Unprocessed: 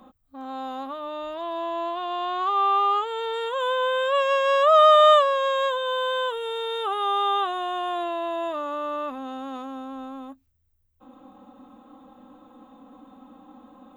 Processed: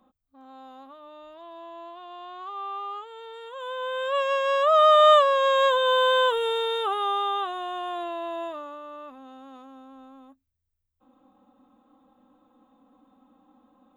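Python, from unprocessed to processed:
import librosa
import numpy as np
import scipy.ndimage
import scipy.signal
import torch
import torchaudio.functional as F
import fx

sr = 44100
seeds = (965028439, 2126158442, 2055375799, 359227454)

y = fx.gain(x, sr, db=fx.line((3.43, -13.0), (4.17, -3.0), (4.76, -3.0), (5.85, 5.0), (6.41, 5.0), (7.32, -4.0), (8.42, -4.0), (8.82, -11.5)))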